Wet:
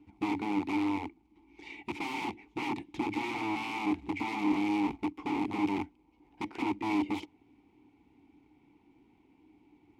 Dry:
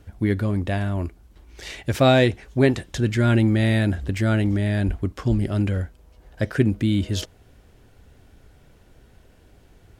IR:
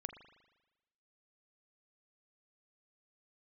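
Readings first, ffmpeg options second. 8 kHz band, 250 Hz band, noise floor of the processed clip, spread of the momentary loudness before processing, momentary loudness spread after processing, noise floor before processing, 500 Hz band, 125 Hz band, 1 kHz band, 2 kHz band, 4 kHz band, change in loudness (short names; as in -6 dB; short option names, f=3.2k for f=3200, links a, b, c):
under -10 dB, -8.5 dB, -67 dBFS, 11 LU, 11 LU, -54 dBFS, -17.0 dB, -27.5 dB, -3.0 dB, -9.0 dB, -12.5 dB, -11.5 dB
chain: -filter_complex "[0:a]aeval=exprs='(mod(10*val(0)+1,2)-1)/10':c=same,acrusher=bits=5:mode=log:mix=0:aa=0.000001,asplit=3[a][b][c];[a]bandpass=f=300:t=q:w=8,volume=0dB[d];[b]bandpass=f=870:t=q:w=8,volume=-6dB[e];[c]bandpass=f=2.24k:t=q:w=8,volume=-9dB[f];[d][e][f]amix=inputs=3:normalize=0,volume=5.5dB"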